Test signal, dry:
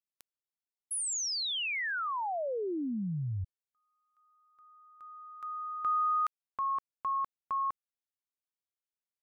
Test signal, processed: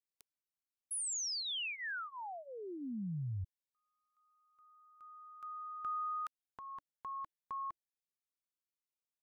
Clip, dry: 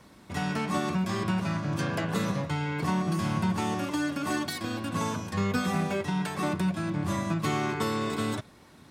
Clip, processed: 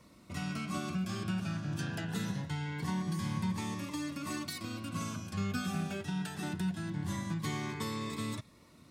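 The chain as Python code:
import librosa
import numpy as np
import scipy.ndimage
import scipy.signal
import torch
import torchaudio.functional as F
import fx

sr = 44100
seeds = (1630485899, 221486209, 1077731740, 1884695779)

y = fx.dynamic_eq(x, sr, hz=510.0, q=0.82, threshold_db=-44.0, ratio=4.0, max_db=-7)
y = fx.notch_cascade(y, sr, direction='rising', hz=0.23)
y = y * 10.0 ** (-4.5 / 20.0)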